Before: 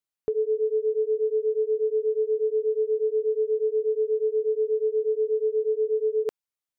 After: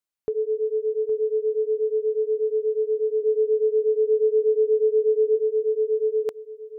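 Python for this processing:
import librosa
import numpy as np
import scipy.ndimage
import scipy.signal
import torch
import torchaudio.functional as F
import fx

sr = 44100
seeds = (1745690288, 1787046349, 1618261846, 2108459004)

y = fx.tilt_shelf(x, sr, db=9.5, hz=670.0, at=(3.21, 5.35), fade=0.02)
y = y + 10.0 ** (-13.5 / 20.0) * np.pad(y, (int(814 * sr / 1000.0), 0))[:len(y)]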